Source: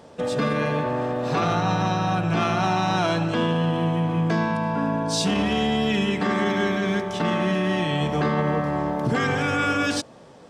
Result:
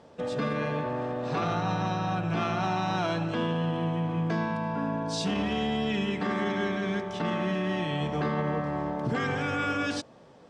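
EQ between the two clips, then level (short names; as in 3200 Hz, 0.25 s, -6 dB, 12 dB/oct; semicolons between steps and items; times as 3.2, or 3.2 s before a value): air absorption 54 m; -6.0 dB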